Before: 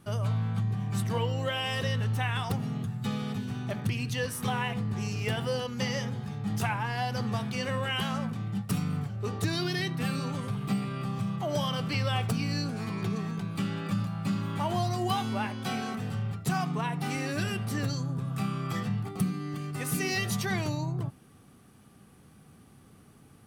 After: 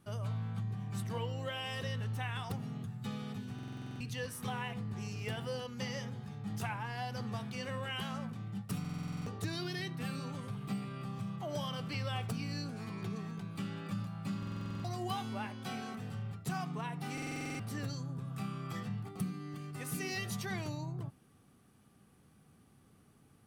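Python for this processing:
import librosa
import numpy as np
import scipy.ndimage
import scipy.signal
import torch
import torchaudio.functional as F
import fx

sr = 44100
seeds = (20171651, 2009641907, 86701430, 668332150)

y = fx.buffer_glitch(x, sr, at_s=(3.54, 8.8, 14.38, 17.13), block=2048, repeats=9)
y = y * 10.0 ** (-8.5 / 20.0)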